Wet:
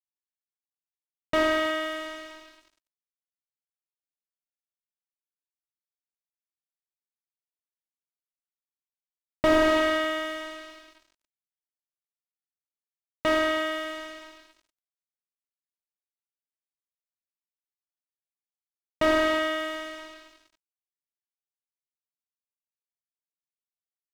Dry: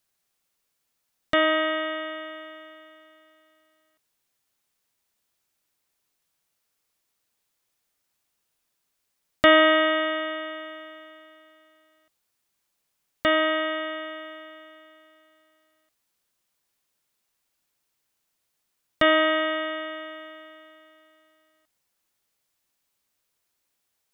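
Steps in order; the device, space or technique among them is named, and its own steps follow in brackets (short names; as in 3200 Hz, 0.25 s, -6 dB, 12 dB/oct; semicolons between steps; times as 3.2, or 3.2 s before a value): early transistor amplifier (crossover distortion -40.5 dBFS; slew limiter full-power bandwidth 110 Hz)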